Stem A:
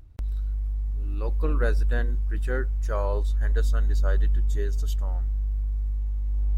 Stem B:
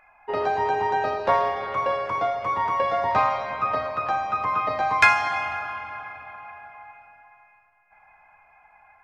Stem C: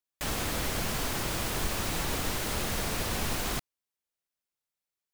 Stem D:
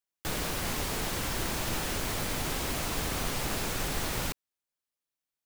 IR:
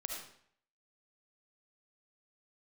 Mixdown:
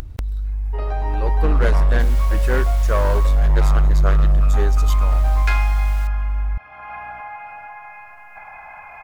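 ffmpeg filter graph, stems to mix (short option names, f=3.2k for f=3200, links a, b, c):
-filter_complex "[0:a]dynaudnorm=f=420:g=5:m=11dB,volume=0dB[a];[1:a]adelay=450,volume=-10.5dB,asplit=2[b][c];[c]volume=-5dB[d];[3:a]highpass=1k,aeval=exprs='val(0)+0.00158*(sin(2*PI*60*n/s)+sin(2*PI*2*60*n/s)/2+sin(2*PI*3*60*n/s)/3+sin(2*PI*4*60*n/s)/4+sin(2*PI*5*60*n/s)/5)':c=same,adelay=1750,volume=2.5dB,afade=t=out:st=3.18:d=0.26:silence=0.237137,afade=t=in:st=4.73:d=0.56:silence=0.354813[e];[4:a]atrim=start_sample=2205[f];[d][f]afir=irnorm=-1:irlink=0[g];[a][b][e][g]amix=inputs=4:normalize=0,acompressor=mode=upward:threshold=-18dB:ratio=2.5,asoftclip=type=hard:threshold=-11dB"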